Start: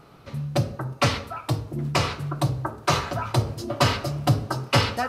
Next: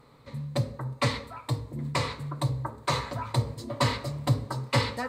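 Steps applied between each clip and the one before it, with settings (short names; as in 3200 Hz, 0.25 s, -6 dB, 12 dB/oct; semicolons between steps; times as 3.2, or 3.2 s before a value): ripple EQ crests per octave 1, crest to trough 9 dB; gain -6.5 dB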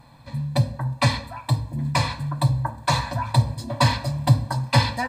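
comb 1.2 ms, depth 96%; gain +3.5 dB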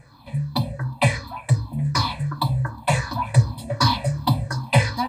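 moving spectral ripple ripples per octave 0.52, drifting -2.7 Hz, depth 15 dB; gain -1.5 dB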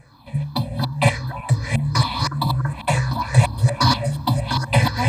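reverse delay 0.352 s, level -1.5 dB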